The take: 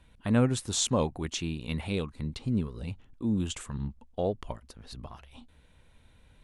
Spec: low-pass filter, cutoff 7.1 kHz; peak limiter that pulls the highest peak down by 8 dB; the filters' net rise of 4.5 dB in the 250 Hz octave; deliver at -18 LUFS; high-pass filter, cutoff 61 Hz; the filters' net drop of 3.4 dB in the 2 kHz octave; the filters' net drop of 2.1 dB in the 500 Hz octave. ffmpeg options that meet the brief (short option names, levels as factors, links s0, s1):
-af "highpass=61,lowpass=7100,equalizer=f=250:t=o:g=6,equalizer=f=500:t=o:g=-4,equalizer=f=2000:t=o:g=-4.5,volume=4.73,alimiter=limit=0.501:level=0:latency=1"